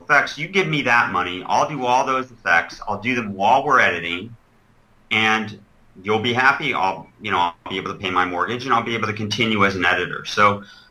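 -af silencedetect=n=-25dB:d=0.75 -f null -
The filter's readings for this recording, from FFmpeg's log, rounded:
silence_start: 4.25
silence_end: 5.11 | silence_duration: 0.87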